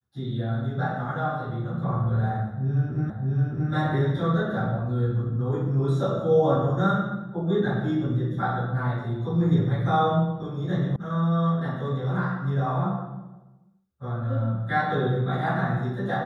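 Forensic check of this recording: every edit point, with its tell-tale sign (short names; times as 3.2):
3.1 repeat of the last 0.62 s
10.96 sound cut off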